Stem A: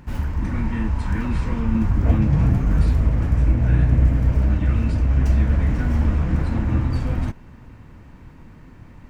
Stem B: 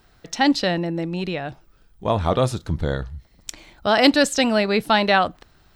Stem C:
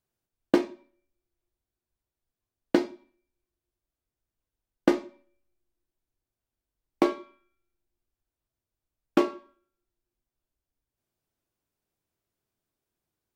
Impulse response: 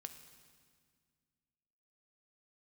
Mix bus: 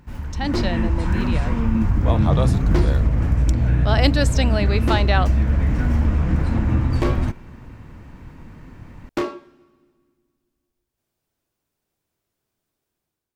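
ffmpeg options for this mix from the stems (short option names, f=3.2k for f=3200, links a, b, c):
-filter_complex "[0:a]acompressor=threshold=-18dB:ratio=2,volume=-6dB[a];[1:a]volume=-13dB[b];[2:a]asoftclip=type=tanh:threshold=-24dB,volume=-4.5dB,asplit=2[c][d];[d]volume=-6.5dB[e];[3:a]atrim=start_sample=2205[f];[e][f]afir=irnorm=-1:irlink=0[g];[a][b][c][g]amix=inputs=4:normalize=0,dynaudnorm=f=210:g=5:m=9dB"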